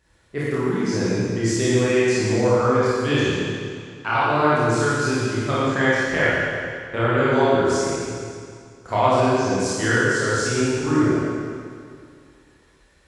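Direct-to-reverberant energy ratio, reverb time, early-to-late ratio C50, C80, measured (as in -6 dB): -10.0 dB, 2.2 s, -6.0 dB, -3.0 dB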